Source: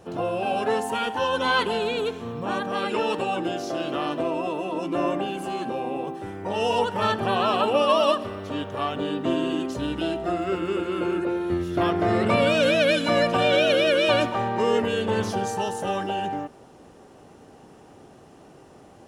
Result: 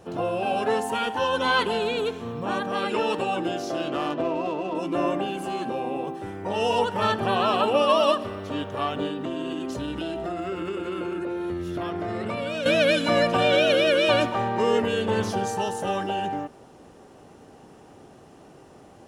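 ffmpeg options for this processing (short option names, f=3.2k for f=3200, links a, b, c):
-filter_complex "[0:a]asettb=1/sr,asplit=3[a][b][c];[a]atrim=end=3.884[d];[b]atrim=start=3.88:end=4.75,asetpts=PTS-STARTPTS,afade=t=in:d=0.004:c=qsin,afade=t=out:st=0.866:d=0.004:c=qsin,adynamicsmooth=sensitivity=5.5:basefreq=2.6k[e];[c]atrim=start=4.746[f];[d][e]acrossfade=d=0.004:c1=hsin:c2=qsin[g];[g][f]acrossfade=d=0.004:c1=qsin:c2=hsin,asettb=1/sr,asplit=3[h][i][j];[h]atrim=end=9.074[k];[i]atrim=start=9.07:end=12.66,asetpts=PTS-STARTPTS,afade=t=in:d=0.004:c=qsin,afade=t=out:st=3.586:d=0.004:c=qsin,acompressor=threshold=-26dB:ratio=6:attack=3.2:release=140:knee=1:detection=peak[l];[j]atrim=start=12.656[m];[k][l]acrossfade=d=0.004:c1=hsin:c2=qsin[n];[n][m]acrossfade=d=0.004:c1=qsin:c2=hsin"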